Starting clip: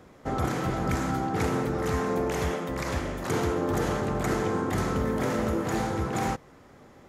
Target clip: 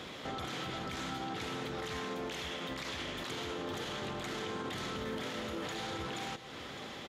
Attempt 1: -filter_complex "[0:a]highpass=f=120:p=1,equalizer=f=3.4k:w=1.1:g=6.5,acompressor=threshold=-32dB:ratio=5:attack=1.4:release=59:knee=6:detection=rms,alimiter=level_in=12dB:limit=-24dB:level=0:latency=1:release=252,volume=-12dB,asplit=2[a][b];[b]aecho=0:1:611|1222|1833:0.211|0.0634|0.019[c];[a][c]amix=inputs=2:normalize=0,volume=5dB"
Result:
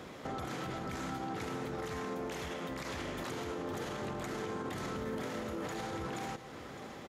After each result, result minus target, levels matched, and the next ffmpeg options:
compressor: peak gain reduction +10.5 dB; 4000 Hz band -7.0 dB
-filter_complex "[0:a]highpass=f=120:p=1,equalizer=f=3.4k:w=1.1:g=6.5,alimiter=level_in=12dB:limit=-24dB:level=0:latency=1:release=252,volume=-12dB,asplit=2[a][b];[b]aecho=0:1:611|1222|1833:0.211|0.0634|0.019[c];[a][c]amix=inputs=2:normalize=0,volume=5dB"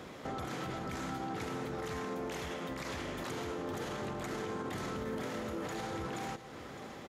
4000 Hz band -7.0 dB
-filter_complex "[0:a]highpass=f=120:p=1,equalizer=f=3.4k:w=1.1:g=18,alimiter=level_in=12dB:limit=-24dB:level=0:latency=1:release=252,volume=-12dB,asplit=2[a][b];[b]aecho=0:1:611|1222|1833:0.211|0.0634|0.019[c];[a][c]amix=inputs=2:normalize=0,volume=5dB"

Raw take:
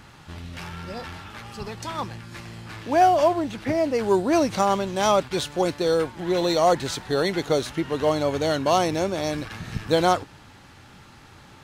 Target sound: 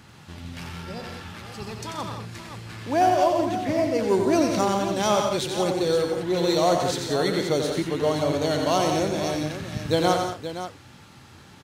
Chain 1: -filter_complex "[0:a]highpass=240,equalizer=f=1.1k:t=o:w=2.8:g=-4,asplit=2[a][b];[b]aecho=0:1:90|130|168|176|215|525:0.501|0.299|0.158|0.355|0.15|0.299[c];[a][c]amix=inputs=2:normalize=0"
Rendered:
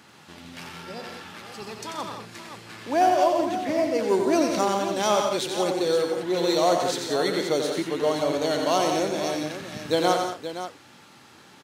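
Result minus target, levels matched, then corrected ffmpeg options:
125 Hz band -8.0 dB
-filter_complex "[0:a]highpass=76,equalizer=f=1.1k:t=o:w=2.8:g=-4,asplit=2[a][b];[b]aecho=0:1:90|130|168|176|215|525:0.501|0.299|0.158|0.355|0.15|0.299[c];[a][c]amix=inputs=2:normalize=0"

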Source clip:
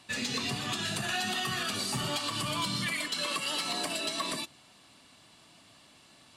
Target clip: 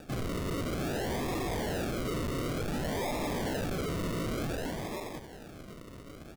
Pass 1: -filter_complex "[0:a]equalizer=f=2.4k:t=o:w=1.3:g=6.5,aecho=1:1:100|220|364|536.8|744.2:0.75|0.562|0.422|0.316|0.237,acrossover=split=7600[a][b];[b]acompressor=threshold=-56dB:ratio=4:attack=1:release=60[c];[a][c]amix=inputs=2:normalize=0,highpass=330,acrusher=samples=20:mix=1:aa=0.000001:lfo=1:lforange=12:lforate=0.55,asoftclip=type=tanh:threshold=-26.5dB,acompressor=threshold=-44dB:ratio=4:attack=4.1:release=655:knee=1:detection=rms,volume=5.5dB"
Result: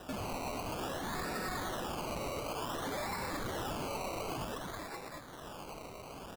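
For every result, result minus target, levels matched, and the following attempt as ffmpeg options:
compressor: peak gain reduction +13 dB; soft clip: distortion -6 dB; decimation with a swept rate: distortion -4 dB
-filter_complex "[0:a]equalizer=f=2.4k:t=o:w=1.3:g=6.5,aecho=1:1:100|220|364|536.8|744.2:0.75|0.562|0.422|0.316|0.237,acrossover=split=7600[a][b];[b]acompressor=threshold=-56dB:ratio=4:attack=1:release=60[c];[a][c]amix=inputs=2:normalize=0,highpass=330,acrusher=samples=20:mix=1:aa=0.000001:lfo=1:lforange=12:lforate=0.55,asoftclip=type=tanh:threshold=-26.5dB,volume=5.5dB"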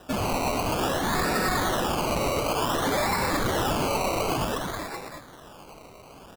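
soft clip: distortion -6 dB; decimation with a swept rate: distortion -4 dB
-filter_complex "[0:a]equalizer=f=2.4k:t=o:w=1.3:g=6.5,aecho=1:1:100|220|364|536.8|744.2:0.75|0.562|0.422|0.316|0.237,acrossover=split=7600[a][b];[b]acompressor=threshold=-56dB:ratio=4:attack=1:release=60[c];[a][c]amix=inputs=2:normalize=0,highpass=330,acrusher=samples=20:mix=1:aa=0.000001:lfo=1:lforange=12:lforate=0.55,asoftclip=type=tanh:threshold=-37dB,volume=5.5dB"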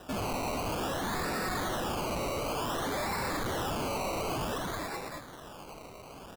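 decimation with a swept rate: distortion -4 dB
-filter_complex "[0:a]equalizer=f=2.4k:t=o:w=1.3:g=6.5,aecho=1:1:100|220|364|536.8|744.2:0.75|0.562|0.422|0.316|0.237,acrossover=split=7600[a][b];[b]acompressor=threshold=-56dB:ratio=4:attack=1:release=60[c];[a][c]amix=inputs=2:normalize=0,highpass=330,acrusher=samples=42:mix=1:aa=0.000001:lfo=1:lforange=25.2:lforate=0.55,asoftclip=type=tanh:threshold=-37dB,volume=5.5dB"

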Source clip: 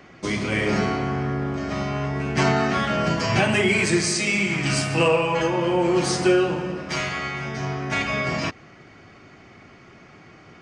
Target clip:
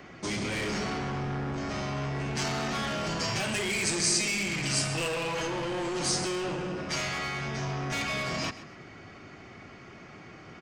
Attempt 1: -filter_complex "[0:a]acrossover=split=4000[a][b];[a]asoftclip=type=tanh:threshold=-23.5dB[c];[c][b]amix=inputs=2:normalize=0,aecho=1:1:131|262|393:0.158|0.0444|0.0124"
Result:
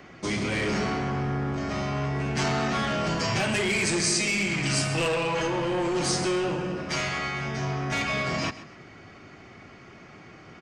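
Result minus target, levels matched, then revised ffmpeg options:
soft clip: distortion -4 dB
-filter_complex "[0:a]acrossover=split=4000[a][b];[a]asoftclip=type=tanh:threshold=-30.5dB[c];[c][b]amix=inputs=2:normalize=0,aecho=1:1:131|262|393:0.158|0.0444|0.0124"

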